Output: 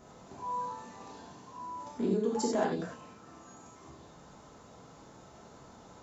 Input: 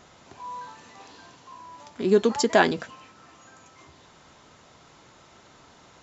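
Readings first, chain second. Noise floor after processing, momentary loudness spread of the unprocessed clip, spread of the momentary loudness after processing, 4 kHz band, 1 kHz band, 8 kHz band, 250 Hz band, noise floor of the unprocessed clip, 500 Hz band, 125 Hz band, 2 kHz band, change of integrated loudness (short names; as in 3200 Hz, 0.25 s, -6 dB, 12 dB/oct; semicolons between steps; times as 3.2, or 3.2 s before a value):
-55 dBFS, 20 LU, 23 LU, -14.0 dB, -7.0 dB, n/a, -6.0 dB, -54 dBFS, -9.5 dB, -4.5 dB, -17.5 dB, -11.0 dB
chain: bell 2900 Hz -12 dB 2.5 oct; compressor 6:1, threshold -30 dBFS, peak gain reduction 15 dB; non-linear reverb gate 0.12 s flat, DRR -4 dB; gain -2 dB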